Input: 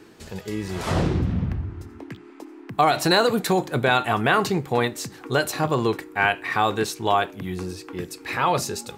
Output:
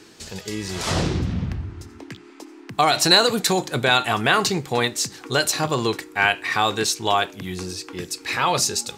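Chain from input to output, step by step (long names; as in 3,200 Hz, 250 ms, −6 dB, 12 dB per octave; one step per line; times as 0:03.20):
parametric band 5,800 Hz +11.5 dB 2.2 octaves
level −1 dB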